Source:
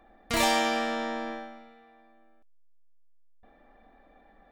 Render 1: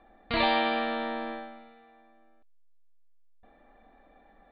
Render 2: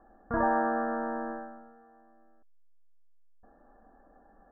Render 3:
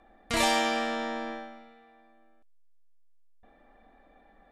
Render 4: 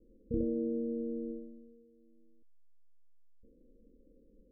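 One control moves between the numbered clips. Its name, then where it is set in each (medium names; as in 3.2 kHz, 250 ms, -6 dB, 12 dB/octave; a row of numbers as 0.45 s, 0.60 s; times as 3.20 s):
Chebyshev low-pass, frequency: 4.5 kHz, 1.7 kHz, 12 kHz, 530 Hz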